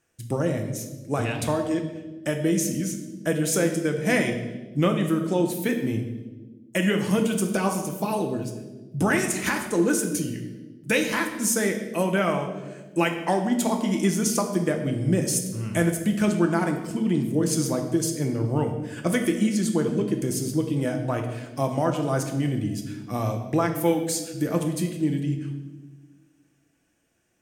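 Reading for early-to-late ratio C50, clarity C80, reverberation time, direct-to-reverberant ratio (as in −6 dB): 7.5 dB, 9.5 dB, 1.3 s, 3.5 dB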